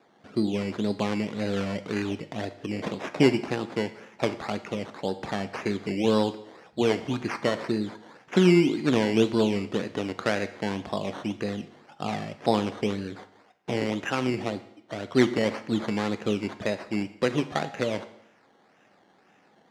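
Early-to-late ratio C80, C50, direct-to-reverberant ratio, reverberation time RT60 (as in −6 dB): 16.5 dB, 14.0 dB, 10.5 dB, 0.75 s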